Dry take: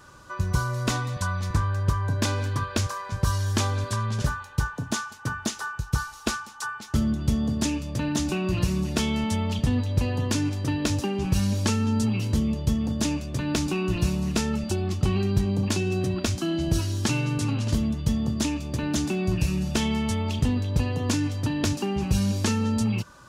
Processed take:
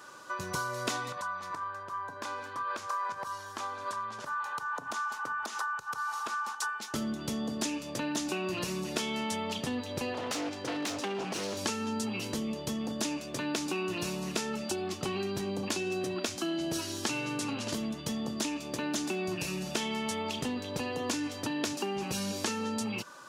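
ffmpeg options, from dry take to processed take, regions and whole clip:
-filter_complex "[0:a]asettb=1/sr,asplit=3[s0][s1][s2];[s0]atrim=end=1.124[s3];[s1]atrim=start=1.12:end=6.55,asetpts=PTS-STARTPTS,afade=t=in:d=0.004:c=qsin,afade=t=out:st=5.426:d=0.004:c=qsin,acompressor=threshold=0.0141:ratio=10:attack=3.2:release=140:knee=1:detection=peak,equalizer=f=1100:t=o:w=1.3:g=12[s4];[s2]atrim=start=6.546[s5];[s3][s4]acrossfade=d=0.004:c1=hsin:c2=qsin[s6];[s6][s5]acrossfade=d=0.004:c1=qsin:c2=hsin,asettb=1/sr,asplit=3[s7][s8][s9];[s7]atrim=end=10.144[s10];[s8]atrim=start=10.14:end=11.57,asetpts=PTS-STARTPTS,afade=t=in:d=0.004:c=qsin,afade=t=out:st=1.426:d=0.004:c=qsin,lowshelf=f=110:g=-5,aeval=exprs='0.0596*(abs(mod(val(0)/0.0596+3,4)-2)-1)':c=same,adynamicsmooth=sensitivity=7:basefreq=6900[s11];[s9]atrim=start=11.566[s12];[s10][s11]acrossfade=d=0.004:c1=hsin:c2=qsin[s13];[s13][s12]acrossfade=d=0.004:c1=qsin:c2=hsin,highpass=330,acompressor=threshold=0.0224:ratio=2.5,volume=1.19"

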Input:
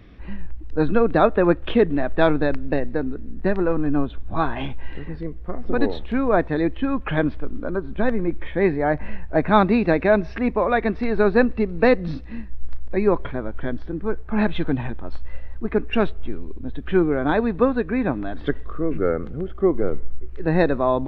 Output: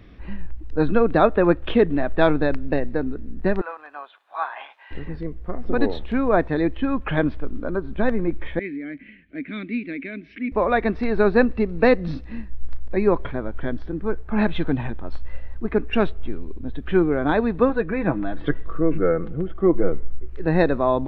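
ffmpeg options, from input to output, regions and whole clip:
-filter_complex "[0:a]asettb=1/sr,asplit=3[s0][s1][s2];[s0]atrim=end=3.614[s3];[s1]atrim=start=3.61:end=4.91,asetpts=PTS-STARTPTS,afade=t=in:d=0.004:c=qsin,afade=t=out:st=1.296:d=0.004:c=qsin,acrossover=split=2600[s4][s5];[s5]acompressor=threshold=0.00224:ratio=4:attack=1:release=60[s6];[s4][s6]amix=inputs=2:normalize=0,highpass=f=760:w=0.5412,highpass=f=760:w=1.3066,tremolo=f=190:d=0.261[s7];[s2]atrim=start=4.906[s8];[s3][s7]acrossfade=d=0.004:c1=hsin:c2=qsin[s9];[s9][s8]acrossfade=d=0.004:c1=qsin:c2=hsin,asettb=1/sr,asplit=3[s10][s11][s12];[s10]atrim=end=8.594[s13];[s11]atrim=start=8.59:end=10.52,asetpts=PTS-STARTPTS,afade=t=in:d=0.004:c=qsin,afade=t=out:st=1.926:d=0.004:c=qsin,equalizer=f=2300:t=o:w=2:g=7,acompressor=mode=upward:threshold=0.112:ratio=2.5:attack=3.2:release=140:knee=2.83:detection=peak,asplit=3[s14][s15][s16];[s14]bandpass=f=270:t=q:w=8,volume=1[s17];[s15]bandpass=f=2290:t=q:w=8,volume=0.501[s18];[s16]bandpass=f=3010:t=q:w=8,volume=0.355[s19];[s17][s18][s19]amix=inputs=3:normalize=0[s20];[s12]atrim=start=10.516[s21];[s13][s20]acrossfade=d=0.004:c1=hsin:c2=qsin[s22];[s22][s21]acrossfade=d=0.004:c1=qsin:c2=hsin,asettb=1/sr,asplit=3[s23][s24][s25];[s23]atrim=end=17.694[s26];[s24]atrim=start=17.69:end=19.92,asetpts=PTS-STARTPTS,afade=t=in:d=0.004:c=qsin,afade=t=out:st=2.226:d=0.004:c=qsin,lowpass=3600,aecho=1:1:6.1:0.56,atrim=end_sample=98343[s27];[s25]atrim=start=19.916[s28];[s26][s27]acrossfade=d=0.004:c1=hsin:c2=qsin[s29];[s29][s28]acrossfade=d=0.004:c1=qsin:c2=hsin"

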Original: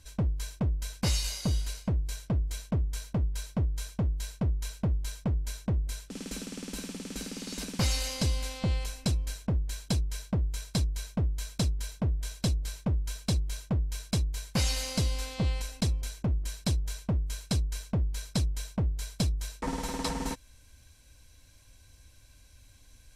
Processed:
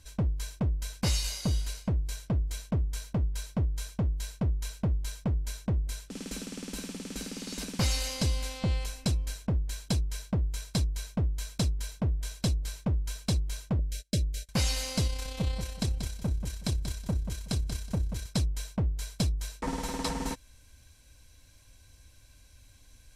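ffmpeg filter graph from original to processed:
-filter_complex "[0:a]asettb=1/sr,asplit=3[s0][s1][s2];[s0]atrim=end=13.794[s3];[s1]atrim=start=13.79:end=14.49,asetpts=PTS-STARTPTS,afade=t=in:d=0.004:c=qsin,afade=t=out:st=0.696:d=0.004:c=qsin,agate=range=0.0398:threshold=0.0112:ratio=16:release=100:detection=peak,asuperstop=centerf=910:order=4:qfactor=0.68,equalizer=f=590:t=o:w=0.29:g=14[s4];[s2]atrim=start=14.486[s5];[s3][s4]acrossfade=d=0.004:c1=hsin:c2=qsin[s6];[s6][s5]acrossfade=d=0.004:c1=qsin:c2=hsin,asettb=1/sr,asplit=3[s7][s8][s9];[s7]atrim=end=15.074[s10];[s8]atrim=start=15.07:end=18.26,asetpts=PTS-STARTPTS,afade=t=in:d=0.004:c=qsin,afade=t=out:st=3.186:d=0.004:c=qsin,tremolo=f=32:d=0.462,aecho=1:1:185|370|555:0.398|0.0836|0.0176,atrim=end_sample=140679[s11];[s9]atrim=start=18.256[s12];[s10][s11]acrossfade=d=0.004:c1=hsin:c2=qsin[s13];[s13][s12]acrossfade=d=0.004:c1=qsin:c2=hsin"

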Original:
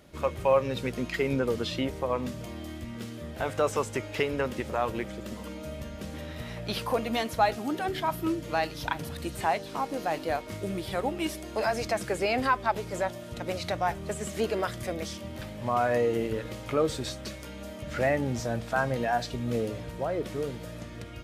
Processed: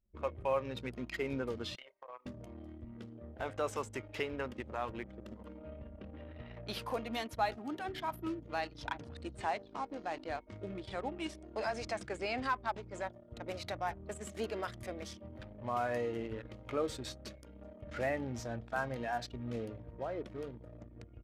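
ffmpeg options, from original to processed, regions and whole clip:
-filter_complex "[0:a]asettb=1/sr,asplit=3[s0][s1][s2];[s0]atrim=end=1.754[s3];[s1]atrim=start=1.75:end=2.26,asetpts=PTS-STARTPTS,afade=t=in:d=0.004:c=qsin,afade=t=out:st=0.506:d=0.004:c=qsin,highpass=980,acompressor=threshold=0.0178:ratio=16:attack=3.2:release=140:knee=1:detection=peak,asplit=2[s4][s5];[s5]adelay=32,volume=0.422[s6];[s4][s6]amix=inputs=2:normalize=0,atrim=end_sample=22491[s7];[s2]atrim=start=2.256[s8];[s3][s7]acrossfade=d=0.004:c1=hsin:c2=qsin[s9];[s9][s8]acrossfade=d=0.004:c1=qsin:c2=hsin,asettb=1/sr,asplit=3[s10][s11][s12];[s10]atrim=end=5.584[s13];[s11]atrim=start=5.58:end=6.54,asetpts=PTS-STARTPTS,afade=t=in:d=0.004:c=qsin,afade=t=out:st=0.956:d=0.004:c=qsin,lowpass=3800,equalizer=f=2800:t=o:w=0.21:g=5[s14];[s12]atrim=start=6.536[s15];[s13][s14]acrossfade=d=0.004:c1=hsin:c2=qsin[s16];[s16][s15]acrossfade=d=0.004:c1=qsin:c2=hsin,asettb=1/sr,asplit=3[s17][s18][s19];[s17]atrim=end=8.614[s20];[s18]atrim=start=8.61:end=13.03,asetpts=PTS-STARTPTS,afade=t=in:d=0.004:c=qsin,afade=t=out:st=4.416:d=0.004:c=qsin,lowpass=f=9100:w=0.5412,lowpass=f=9100:w=1.3066,asoftclip=type=hard:threshold=0.168[s21];[s19]atrim=start=13.026[s22];[s20][s21]acrossfade=d=0.004:c1=hsin:c2=qsin[s23];[s23][s22]acrossfade=d=0.004:c1=qsin:c2=hsin,adynamicequalizer=threshold=0.00891:dfrequency=500:dqfactor=1.6:tfrequency=500:tqfactor=1.6:attack=5:release=100:ratio=0.375:range=2.5:mode=cutabove:tftype=bell,anlmdn=1,equalizer=f=160:t=o:w=0.35:g=-9.5,volume=0.398"

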